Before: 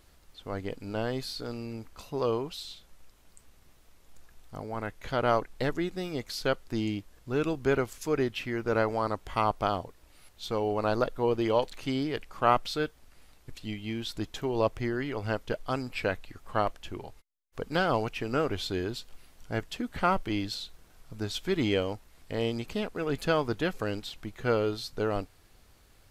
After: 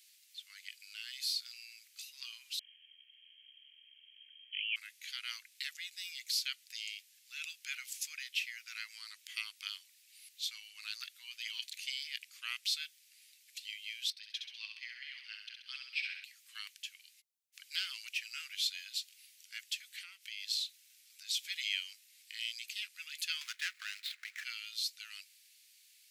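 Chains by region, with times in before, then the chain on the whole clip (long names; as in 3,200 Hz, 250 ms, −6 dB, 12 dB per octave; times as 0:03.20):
0:02.59–0:04.76: notch comb filter 580 Hz + voice inversion scrambler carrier 3,200 Hz + single-tap delay 550 ms −8 dB
0:14.10–0:16.24: Savitzky-Golay smoothing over 15 samples + shaped tremolo saw up 3.6 Hz, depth 50% + repeating echo 66 ms, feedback 54%, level −5 dB
0:19.92–0:21.42: mains-hum notches 60/120/180/240/300/360/420/480 Hz + downward compressor 10 to 1, threshold −31 dBFS
0:23.41–0:24.44: running median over 15 samples + parametric band 1,400 Hz +14 dB 2 octaves + multiband upward and downward compressor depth 70%
whole clip: Butterworth high-pass 2,300 Hz 36 dB per octave; parametric band 3,100 Hz −3 dB 0.77 octaves; level +4.5 dB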